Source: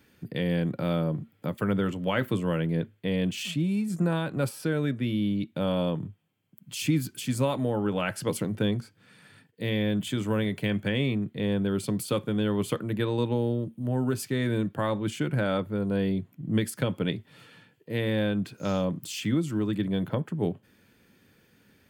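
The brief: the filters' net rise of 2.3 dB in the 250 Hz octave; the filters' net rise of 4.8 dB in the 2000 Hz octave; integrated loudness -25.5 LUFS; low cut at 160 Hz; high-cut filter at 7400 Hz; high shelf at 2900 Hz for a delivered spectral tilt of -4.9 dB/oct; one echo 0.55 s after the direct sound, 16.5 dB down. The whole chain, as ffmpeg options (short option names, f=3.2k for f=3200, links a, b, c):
-af "highpass=160,lowpass=7.4k,equalizer=f=250:t=o:g=4.5,equalizer=f=2k:t=o:g=4,highshelf=f=2.9k:g=5.5,aecho=1:1:550:0.15,volume=1.5dB"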